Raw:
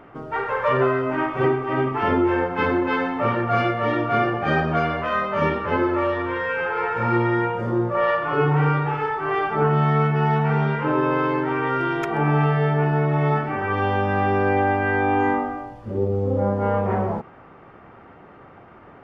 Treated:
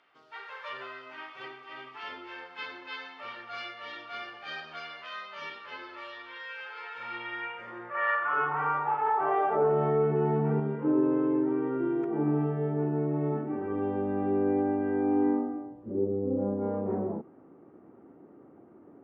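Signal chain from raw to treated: band-pass sweep 4200 Hz -> 300 Hz, 6.81–10.45; 9.06–10.6 fast leveller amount 50%

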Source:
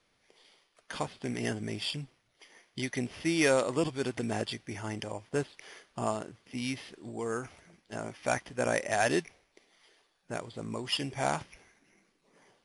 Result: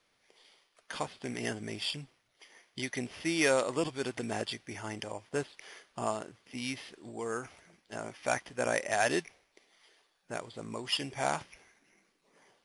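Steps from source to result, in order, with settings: low shelf 300 Hz -6.5 dB

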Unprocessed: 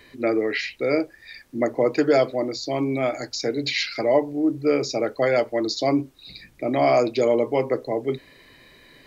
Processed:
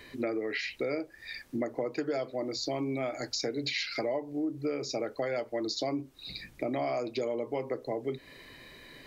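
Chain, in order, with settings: compressor 6:1, threshold -30 dBFS, peak gain reduction 15.5 dB

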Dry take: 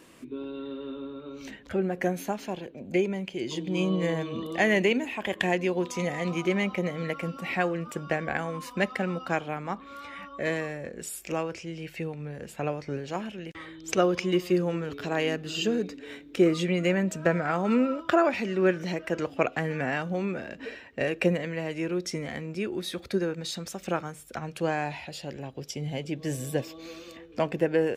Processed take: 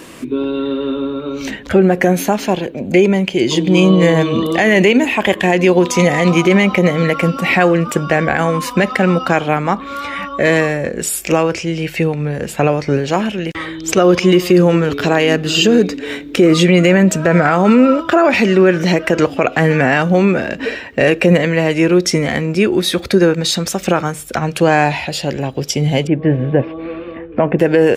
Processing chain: 26.07–27.59 Bessel low-pass 1600 Hz, order 6; maximiser +19 dB; gain -1 dB

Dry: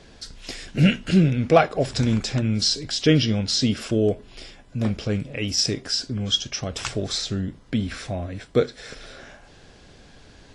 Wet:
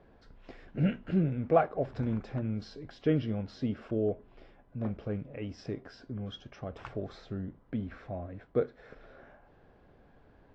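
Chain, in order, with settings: LPF 1100 Hz 12 dB/oct; low shelf 460 Hz -6 dB; gain -5.5 dB

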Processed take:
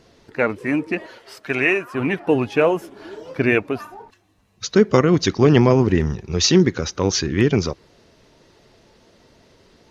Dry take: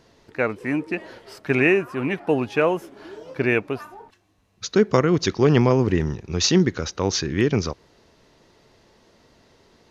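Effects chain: bin magnitudes rounded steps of 15 dB; 1.06–1.95 low shelf 430 Hz -11.5 dB; gain +3.5 dB

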